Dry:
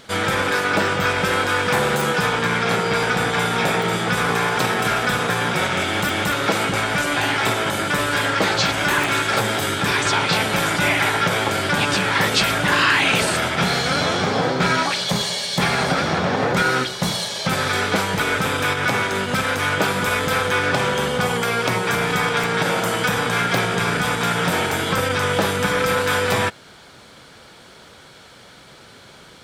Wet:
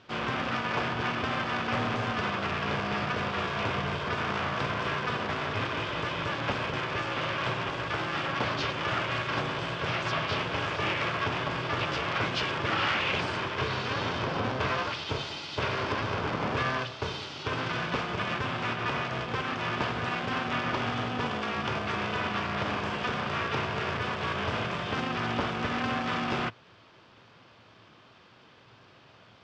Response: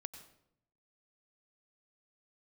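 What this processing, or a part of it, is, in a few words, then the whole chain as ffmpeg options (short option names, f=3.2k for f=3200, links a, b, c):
ring modulator pedal into a guitar cabinet: -af "lowpass=10k,aeval=exprs='val(0)*sgn(sin(2*PI*260*n/s))':c=same,highpass=98,equalizer=f=110:t=q:w=4:g=8,equalizer=f=430:t=q:w=4:g=-3,equalizer=f=760:t=q:w=4:g=-4,equalizer=f=1.9k:t=q:w=4:g=-6,equalizer=f=4k:t=q:w=4:g=-8,lowpass=f=4.5k:w=0.5412,lowpass=f=4.5k:w=1.3066,volume=-8.5dB"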